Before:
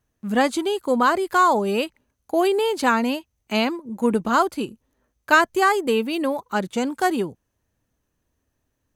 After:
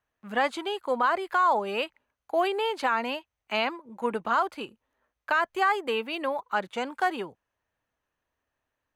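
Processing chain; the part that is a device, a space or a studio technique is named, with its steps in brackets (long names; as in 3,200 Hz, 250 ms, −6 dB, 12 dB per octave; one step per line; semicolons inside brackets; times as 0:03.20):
DJ mixer with the lows and highs turned down (three-way crossover with the lows and the highs turned down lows −15 dB, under 570 Hz, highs −15 dB, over 3,500 Hz; brickwall limiter −14.5 dBFS, peak gain reduction 11 dB)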